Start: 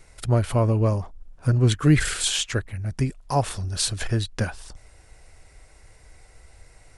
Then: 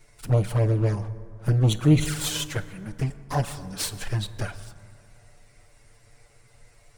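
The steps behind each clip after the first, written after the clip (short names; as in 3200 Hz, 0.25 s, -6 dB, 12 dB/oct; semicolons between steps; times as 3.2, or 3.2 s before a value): minimum comb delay 6.9 ms; envelope flanger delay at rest 9.4 ms, full sweep at -15.5 dBFS; reverb RT60 2.4 s, pre-delay 8 ms, DRR 12.5 dB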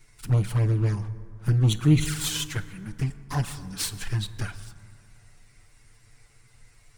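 bell 580 Hz -12 dB 0.85 oct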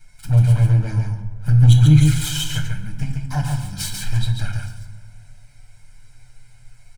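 comb 1.3 ms, depth 82%; echo 0.141 s -4.5 dB; shoebox room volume 94 m³, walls mixed, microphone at 0.46 m; gain -1 dB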